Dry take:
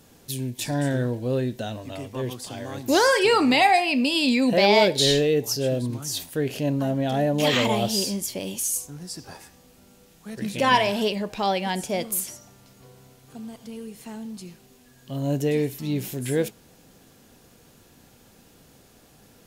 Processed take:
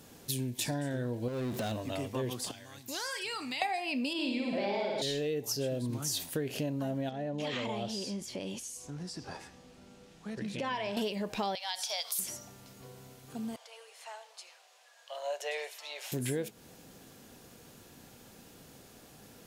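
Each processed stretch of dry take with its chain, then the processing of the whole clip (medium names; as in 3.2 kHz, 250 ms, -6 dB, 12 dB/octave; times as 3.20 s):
1.28–1.72 s: high-pass 47 Hz + compression 4:1, threshold -35 dBFS + power-law waveshaper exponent 0.5
2.51–3.62 s: amplifier tone stack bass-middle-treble 5-5-5 + compression 2:1, threshold -37 dBFS
4.13–5.02 s: low-pass 1.7 kHz 6 dB/octave + bass shelf 170 Hz -8.5 dB + flutter echo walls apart 9.5 m, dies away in 1.4 s
7.09–10.97 s: compression 2.5:1, threshold -36 dBFS + distance through air 73 m
11.55–12.19 s: inverse Chebyshev high-pass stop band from 350 Hz + high-order bell 4.4 kHz +12 dB 1 oct + compression 2:1, threshold -33 dBFS
13.56–16.12 s: steep high-pass 560 Hz 48 dB/octave + distance through air 58 m
whole clip: bass shelf 63 Hz -7 dB; compression 12:1, threshold -30 dBFS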